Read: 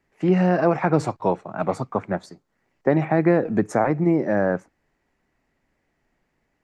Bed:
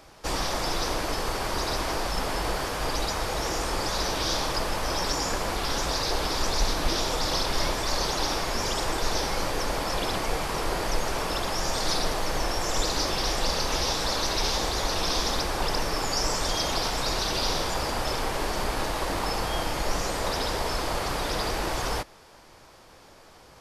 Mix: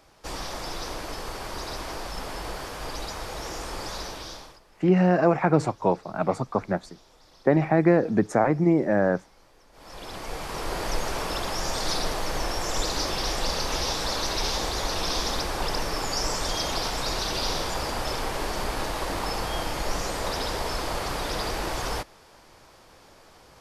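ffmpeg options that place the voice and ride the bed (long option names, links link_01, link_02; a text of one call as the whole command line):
ffmpeg -i stem1.wav -i stem2.wav -filter_complex "[0:a]adelay=4600,volume=-1dB[link_01];[1:a]volume=22.5dB,afade=type=out:start_time=3.92:duration=0.68:silence=0.0668344,afade=type=in:start_time=9.72:duration=1.18:silence=0.0375837[link_02];[link_01][link_02]amix=inputs=2:normalize=0" out.wav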